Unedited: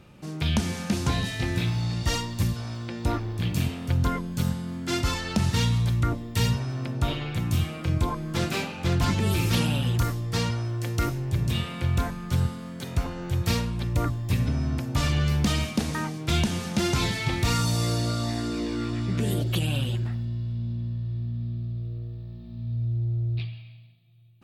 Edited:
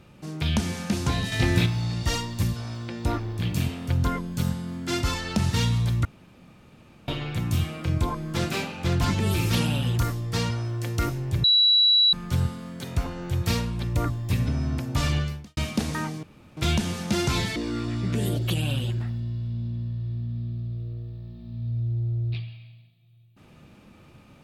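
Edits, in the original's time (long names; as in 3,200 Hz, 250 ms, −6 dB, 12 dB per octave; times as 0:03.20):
0:01.32–0:01.66: clip gain +5.5 dB
0:06.05–0:07.08: fill with room tone
0:11.44–0:12.13: beep over 3,920 Hz −15 dBFS
0:15.16–0:15.57: fade out quadratic
0:16.23: splice in room tone 0.34 s
0:17.22–0:18.61: remove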